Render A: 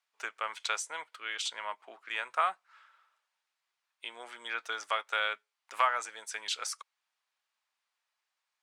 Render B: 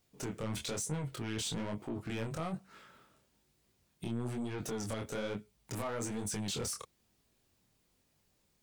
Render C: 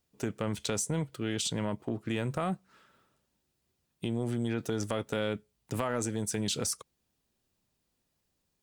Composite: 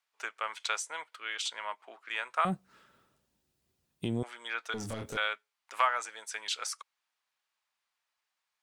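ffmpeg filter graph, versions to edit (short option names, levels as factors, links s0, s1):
-filter_complex "[0:a]asplit=3[s0][s1][s2];[s0]atrim=end=2.452[s3];[2:a]atrim=start=2.448:end=4.232[s4];[s1]atrim=start=4.228:end=4.742[s5];[1:a]atrim=start=4.738:end=5.172[s6];[s2]atrim=start=5.168[s7];[s3][s4]acrossfade=d=0.004:c1=hsin:c2=hsin[s8];[s8][s5]acrossfade=d=0.004:c1=hsin:c2=hsin[s9];[s9][s6]acrossfade=d=0.004:c1=hsin:c2=hsin[s10];[s10][s7]acrossfade=d=0.004:c1=hsin:c2=hsin"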